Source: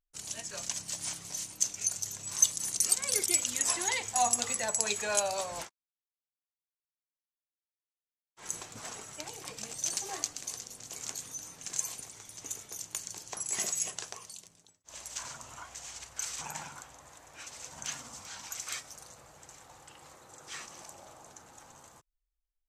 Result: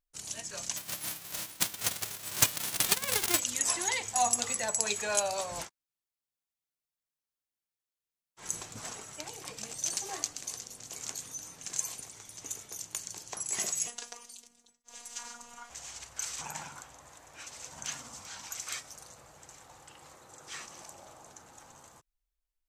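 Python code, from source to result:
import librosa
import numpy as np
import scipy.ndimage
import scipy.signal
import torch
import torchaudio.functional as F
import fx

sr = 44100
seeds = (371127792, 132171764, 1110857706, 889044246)

y = fx.envelope_flatten(x, sr, power=0.1, at=(0.76, 3.38), fade=0.02)
y = fx.bass_treble(y, sr, bass_db=4, treble_db=2, at=(5.49, 8.93))
y = fx.robotise(y, sr, hz=239.0, at=(13.87, 15.7))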